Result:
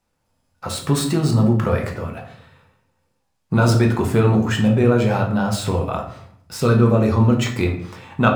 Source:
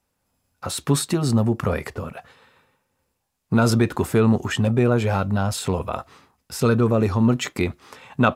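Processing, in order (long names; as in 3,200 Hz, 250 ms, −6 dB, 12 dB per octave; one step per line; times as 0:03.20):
running median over 3 samples
rectangular room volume 110 cubic metres, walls mixed, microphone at 0.69 metres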